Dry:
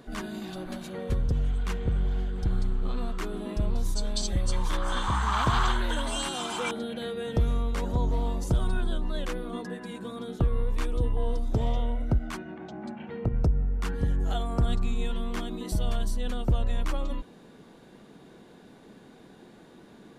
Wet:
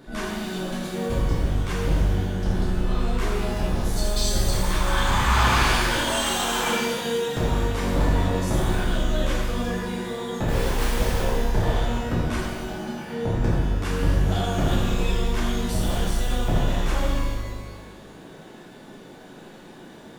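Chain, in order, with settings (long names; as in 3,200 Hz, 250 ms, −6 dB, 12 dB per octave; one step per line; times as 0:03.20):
0:10.48–0:11.20: bit-depth reduction 6 bits, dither none
wave folding −21 dBFS
reverb with rising layers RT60 1.3 s, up +12 semitones, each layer −8 dB, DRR −7 dB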